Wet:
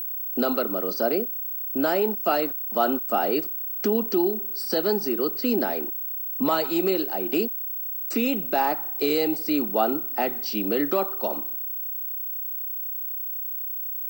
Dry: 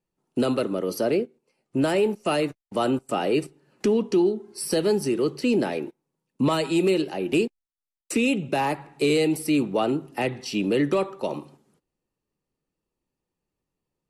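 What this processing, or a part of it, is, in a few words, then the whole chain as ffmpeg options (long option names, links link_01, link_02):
old television with a line whistle: -af "highpass=frequency=200:width=0.5412,highpass=frequency=200:width=1.3066,equalizer=frequency=220:width_type=q:width=4:gain=3,equalizer=frequency=730:width_type=q:width=4:gain=9,equalizer=frequency=1400:width_type=q:width=4:gain=9,equalizer=frequency=2500:width_type=q:width=4:gain=-4,equalizer=frequency=4700:width_type=q:width=4:gain=7,lowpass=frequency=7400:width=0.5412,lowpass=frequency=7400:width=1.3066,aeval=exprs='val(0)+0.0562*sin(2*PI*15734*n/s)':channel_layout=same,volume=-3dB"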